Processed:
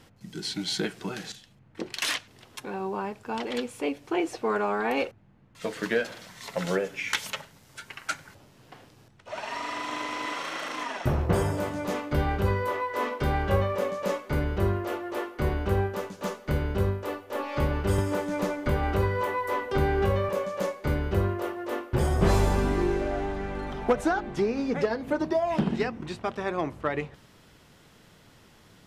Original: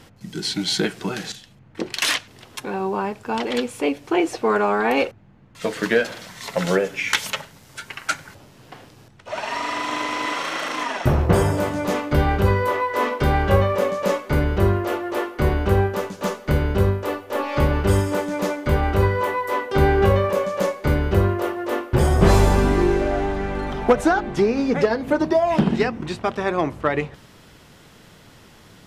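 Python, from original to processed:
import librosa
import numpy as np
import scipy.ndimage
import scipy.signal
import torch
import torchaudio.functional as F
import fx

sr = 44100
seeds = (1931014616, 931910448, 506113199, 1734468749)

y = fx.band_squash(x, sr, depth_pct=70, at=(17.98, 20.29))
y = y * librosa.db_to_amplitude(-7.5)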